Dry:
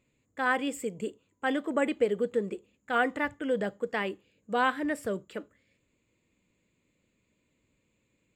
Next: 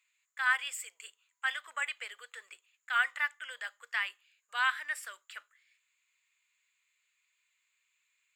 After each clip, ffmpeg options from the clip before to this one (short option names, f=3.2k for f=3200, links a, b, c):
-af "highpass=f=1.3k:w=0.5412,highpass=f=1.3k:w=1.3066,volume=2.5dB"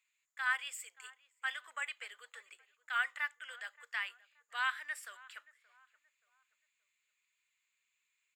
-filter_complex "[0:a]asplit=2[a][b];[b]adelay=576,lowpass=f=1.6k:p=1,volume=-20dB,asplit=2[c][d];[d]adelay=576,lowpass=f=1.6k:p=1,volume=0.42,asplit=2[e][f];[f]adelay=576,lowpass=f=1.6k:p=1,volume=0.42[g];[a][c][e][g]amix=inputs=4:normalize=0,volume=-5dB"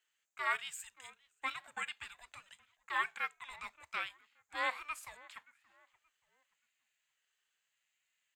-af "aeval=exprs='val(0)*sin(2*PI*470*n/s+470*0.25/0.81*sin(2*PI*0.81*n/s))':c=same,volume=2dB"